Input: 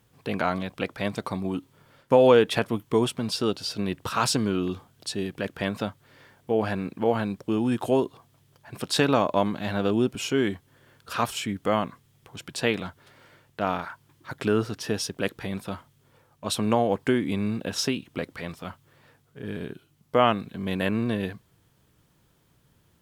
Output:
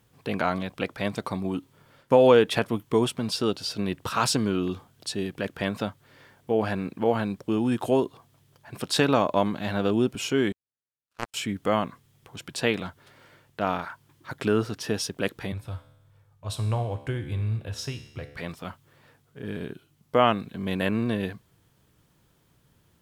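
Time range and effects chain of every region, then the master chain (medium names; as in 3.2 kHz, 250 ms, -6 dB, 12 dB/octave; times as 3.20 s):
10.52–11.34 s: one-bit delta coder 64 kbps, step -32.5 dBFS + power-law waveshaper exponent 3 + upward expansion, over -42 dBFS
15.52–18.37 s: resonant low shelf 150 Hz +11 dB, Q 3 + feedback comb 72 Hz, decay 0.9 s, mix 70%
whole clip: none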